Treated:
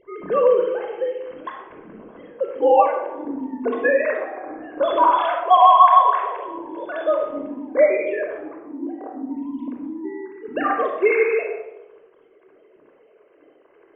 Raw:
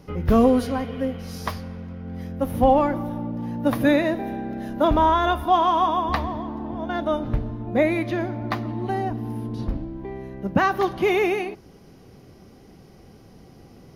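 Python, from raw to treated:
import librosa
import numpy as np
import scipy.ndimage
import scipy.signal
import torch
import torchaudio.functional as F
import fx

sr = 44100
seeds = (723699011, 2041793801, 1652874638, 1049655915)

y = fx.sine_speech(x, sr)
y = fx.bandpass_q(y, sr, hz=240.0, q=1.2, at=(8.41, 9.31))
y = fx.quant_float(y, sr, bits=8)
y = fx.room_shoebox(y, sr, seeds[0], volume_m3=4000.0, walls='furnished', distance_m=5.3)
y = F.gain(torch.from_numpy(y), -2.5).numpy()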